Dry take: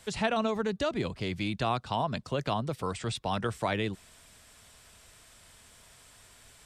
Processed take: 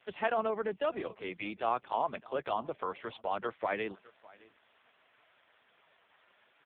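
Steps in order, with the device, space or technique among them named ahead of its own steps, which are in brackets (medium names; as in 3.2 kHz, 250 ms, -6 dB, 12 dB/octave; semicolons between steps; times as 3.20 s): satellite phone (band-pass 360–3000 Hz; delay 607 ms -23 dB; AMR-NB 4.75 kbps 8 kHz)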